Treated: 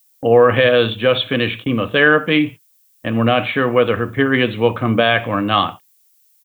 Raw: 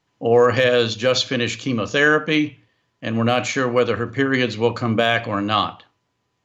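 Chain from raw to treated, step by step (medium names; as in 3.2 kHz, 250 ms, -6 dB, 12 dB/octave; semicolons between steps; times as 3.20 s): level-controlled noise filter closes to 1.6 kHz, open at -16 dBFS; gate -32 dBFS, range -37 dB; resampled via 8 kHz; added noise violet -60 dBFS; trim +3.5 dB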